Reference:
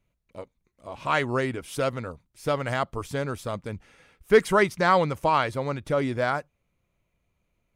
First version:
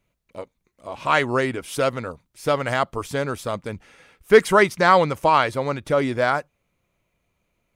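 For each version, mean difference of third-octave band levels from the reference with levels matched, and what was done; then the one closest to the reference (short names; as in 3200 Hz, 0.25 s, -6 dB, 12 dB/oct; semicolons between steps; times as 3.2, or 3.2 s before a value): 1.0 dB: low shelf 160 Hz -7 dB; gain +5.5 dB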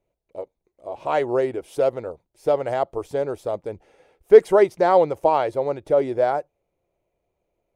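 7.5 dB: band shelf 530 Hz +14 dB; gain -6.5 dB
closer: first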